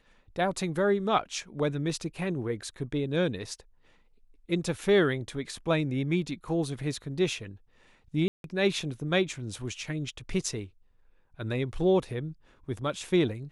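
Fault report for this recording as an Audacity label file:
8.280000	8.440000	drop-out 162 ms

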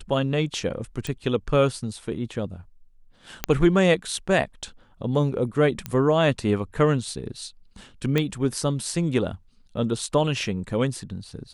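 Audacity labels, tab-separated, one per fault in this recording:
1.070000	1.070000	click
3.440000	3.440000	click −6 dBFS
5.860000	5.860000	click −14 dBFS
8.180000	8.180000	click −10 dBFS

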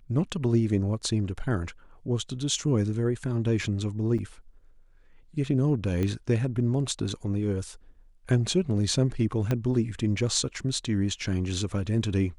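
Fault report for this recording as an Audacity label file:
4.180000	4.190000	drop-out 6.2 ms
6.030000	6.030000	click −17 dBFS
9.510000	9.510000	click −14 dBFS

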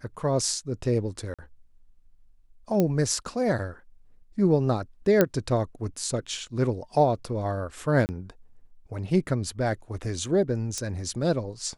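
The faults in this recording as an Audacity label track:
1.340000	1.390000	drop-out 46 ms
2.800000	2.800000	click −11 dBFS
5.210000	5.210000	click −6 dBFS
8.060000	8.090000	drop-out 29 ms
10.780000	10.780000	click −16 dBFS

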